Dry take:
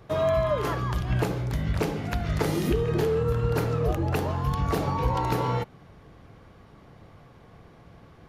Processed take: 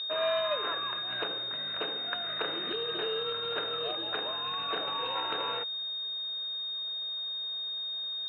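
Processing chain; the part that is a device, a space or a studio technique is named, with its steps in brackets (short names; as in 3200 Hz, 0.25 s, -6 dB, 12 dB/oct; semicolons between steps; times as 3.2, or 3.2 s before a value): toy sound module (decimation joined by straight lines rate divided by 8×; pulse-width modulation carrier 3700 Hz; speaker cabinet 730–4200 Hz, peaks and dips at 860 Hz -9 dB, 1600 Hz +8 dB, 2700 Hz +10 dB)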